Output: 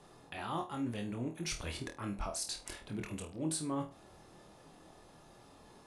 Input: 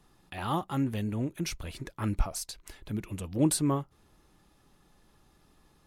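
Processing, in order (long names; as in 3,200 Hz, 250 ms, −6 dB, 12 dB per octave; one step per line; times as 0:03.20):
Butterworth low-pass 11,000 Hz 48 dB per octave
low-shelf EQ 110 Hz −10 dB
reversed playback
downward compressor 4 to 1, threshold −42 dBFS, peak gain reduction 17 dB
reversed playback
noise in a band 69–860 Hz −67 dBFS
flutter between parallel walls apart 4.3 metres, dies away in 0.27 s
level +4 dB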